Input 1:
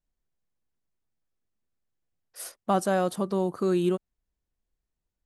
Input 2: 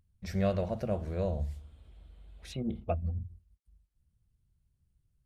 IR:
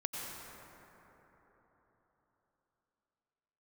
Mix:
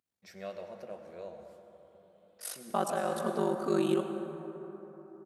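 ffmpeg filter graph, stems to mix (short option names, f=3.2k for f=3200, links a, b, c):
-filter_complex "[0:a]aeval=exprs='val(0)*sin(2*PI*24*n/s)':c=same,adelay=50,volume=-1.5dB,asplit=2[a][b];[b]volume=-5dB[c];[1:a]lowshelf=f=210:g=-11,volume=-11.5dB,asplit=3[d][e][f];[e]volume=-3dB[g];[f]apad=whole_len=233935[h];[a][h]sidechaincompress=threshold=-53dB:ratio=8:attack=16:release=428[i];[2:a]atrim=start_sample=2205[j];[c][g]amix=inputs=2:normalize=0[k];[k][j]afir=irnorm=-1:irlink=0[l];[i][d][l]amix=inputs=3:normalize=0,highpass=200,lowshelf=f=390:g=-3.5"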